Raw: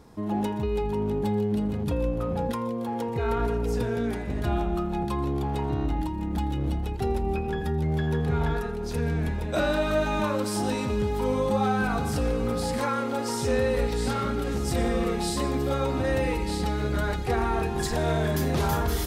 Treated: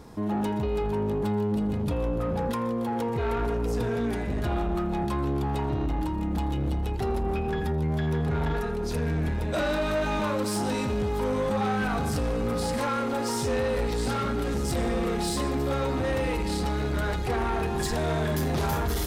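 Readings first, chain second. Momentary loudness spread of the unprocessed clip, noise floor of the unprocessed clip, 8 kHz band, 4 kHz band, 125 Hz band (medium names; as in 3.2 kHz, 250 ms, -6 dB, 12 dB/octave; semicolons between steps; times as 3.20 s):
4 LU, -31 dBFS, 0.0 dB, 0.0 dB, -0.5 dB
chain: in parallel at -2.5 dB: peak limiter -27 dBFS, peak gain reduction 11.5 dB; on the sum: saturation -22 dBFS, distortion -14 dB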